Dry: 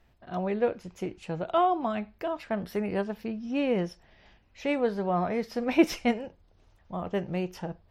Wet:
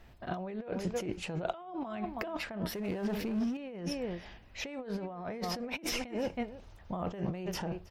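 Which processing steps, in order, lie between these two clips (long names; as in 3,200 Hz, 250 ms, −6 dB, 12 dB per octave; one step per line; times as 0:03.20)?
slap from a distant wall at 55 metres, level −18 dB
compressor whose output falls as the input rises −38 dBFS, ratio −1
0:02.75–0:03.57: power curve on the samples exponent 0.7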